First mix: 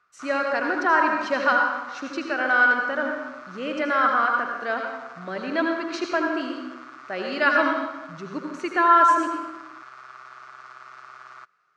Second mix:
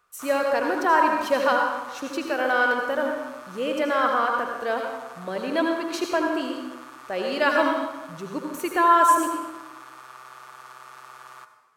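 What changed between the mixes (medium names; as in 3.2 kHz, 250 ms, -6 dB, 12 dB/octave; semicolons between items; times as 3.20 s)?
background: send on; master: remove cabinet simulation 100–5800 Hz, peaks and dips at 490 Hz -7 dB, 910 Hz -4 dB, 1.4 kHz +6 dB, 2 kHz +3 dB, 3.3 kHz -4 dB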